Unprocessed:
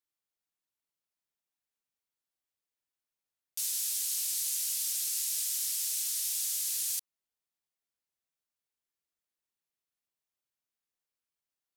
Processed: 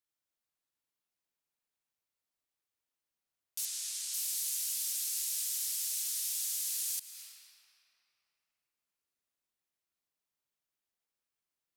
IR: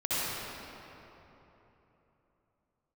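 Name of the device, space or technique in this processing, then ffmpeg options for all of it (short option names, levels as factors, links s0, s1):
ducked reverb: -filter_complex "[0:a]asettb=1/sr,asplit=3[s0][s1][s2];[s0]atrim=end=3.654[s3];[s1]atrim=start=3.65:end=4.14,asetpts=PTS-STARTPTS,afade=t=in:d=0.004:c=qsin,afade=t=out:st=0.486:d=0.004:c=qsin,lowpass=8600[s4];[s2]atrim=start=4.136[s5];[s3][s4]acrossfade=d=0.004:c1=hsin:c2=qsin[s6];[s6][s5]acrossfade=d=0.004:c1=qsin:c2=hsin,asplit=3[s7][s8][s9];[1:a]atrim=start_sample=2205[s10];[s8][s10]afir=irnorm=-1:irlink=0[s11];[s9]apad=whole_len=518828[s12];[s11][s12]sidechaincompress=threshold=0.00562:ratio=8:attack=23:release=216,volume=0.299[s13];[s7][s13]amix=inputs=2:normalize=0,volume=0.708"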